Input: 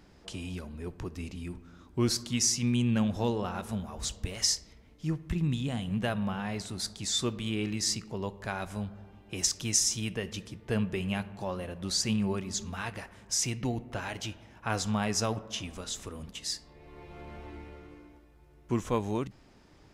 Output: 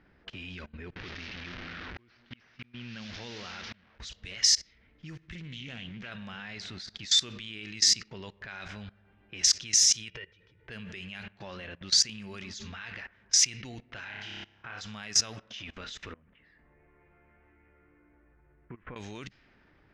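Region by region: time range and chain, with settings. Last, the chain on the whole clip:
0.96–4 delta modulation 32 kbps, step -33.5 dBFS + auto swell 0.732 s
5.35–6.12 steep low-pass 7800 Hz + compressor 2:1, threshold -32 dBFS + Doppler distortion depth 0.27 ms
10.08–10.68 comb 2.1 ms, depth 91% + compressor 20:1, threshold -40 dBFS + air absorption 60 m
14.04–14.81 flutter echo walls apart 5.1 m, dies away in 0.88 s + compressor 2:1, threshold -42 dBFS
16.13–18.96 LPF 2300 Hz 24 dB/oct + compressor 8:1, threshold -39 dBFS
whole clip: low-pass opened by the level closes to 1200 Hz, open at -25.5 dBFS; band shelf 3100 Hz +14 dB 2.5 oct; level quantiser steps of 21 dB

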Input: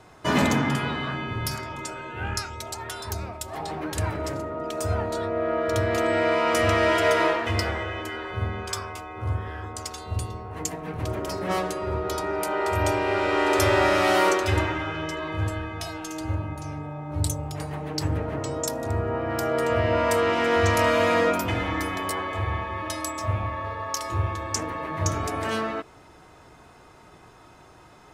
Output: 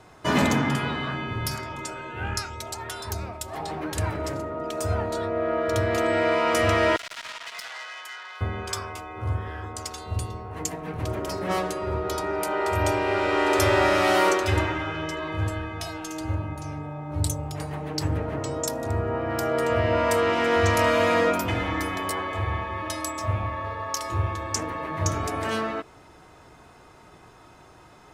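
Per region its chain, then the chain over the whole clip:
6.96–8.41 Bessel high-pass 1200 Hz, order 4 + overloaded stage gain 27 dB + core saturation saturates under 2800 Hz
whole clip: dry

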